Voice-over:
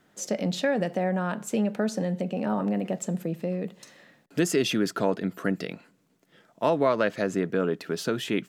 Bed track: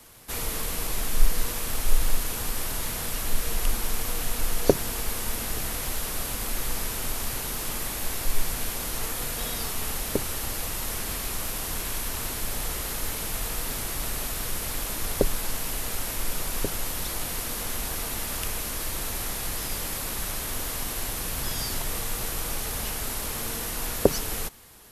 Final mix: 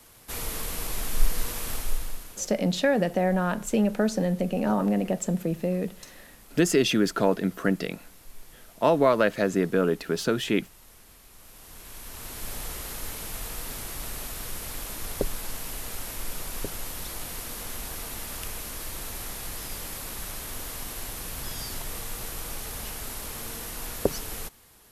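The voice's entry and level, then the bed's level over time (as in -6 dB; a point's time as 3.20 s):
2.20 s, +2.5 dB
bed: 1.73 s -2.5 dB
2.58 s -21.5 dB
11.29 s -21.5 dB
12.48 s -5 dB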